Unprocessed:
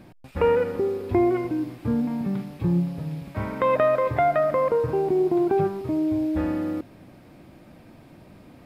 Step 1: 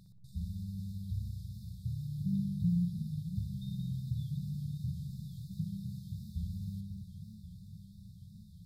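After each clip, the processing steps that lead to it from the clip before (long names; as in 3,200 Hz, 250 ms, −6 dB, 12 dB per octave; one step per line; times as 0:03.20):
brick-wall band-stop 200–3,500 Hz
feedback echo with a low-pass in the loop 61 ms, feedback 77%, low-pass 1,600 Hz, level −6.5 dB
feedback echo with a swinging delay time 538 ms, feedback 71%, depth 172 cents, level −11 dB
level −6 dB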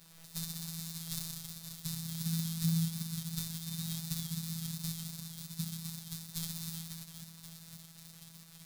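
spectral envelope flattened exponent 0.3
surface crackle 410 per second −46 dBFS
phases set to zero 164 Hz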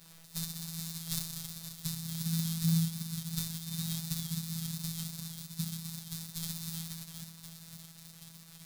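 amplitude modulation by smooth noise, depth 55%
level +4.5 dB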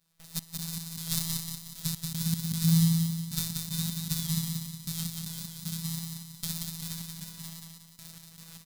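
gate pattern ".x.x.xx." 77 BPM −24 dB
repeating echo 182 ms, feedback 46%, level −4 dB
level +5 dB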